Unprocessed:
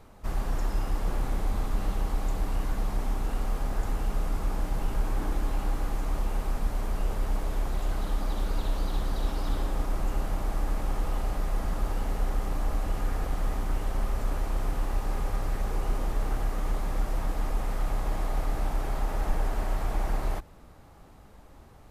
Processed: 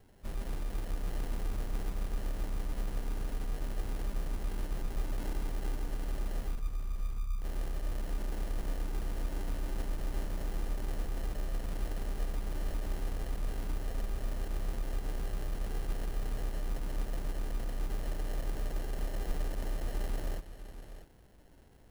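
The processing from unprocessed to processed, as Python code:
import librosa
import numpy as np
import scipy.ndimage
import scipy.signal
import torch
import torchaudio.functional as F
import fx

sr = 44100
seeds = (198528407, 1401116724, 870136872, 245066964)

p1 = fx.envelope_sharpen(x, sr, power=3.0, at=(6.55, 7.44))
p2 = fx.sample_hold(p1, sr, seeds[0], rate_hz=1200.0, jitter_pct=0)
p3 = fx.peak_eq(p2, sr, hz=11000.0, db=6.0, octaves=0.56)
p4 = p3 + fx.echo_single(p3, sr, ms=646, db=-11.5, dry=0)
y = F.gain(torch.from_numpy(p4), -8.0).numpy()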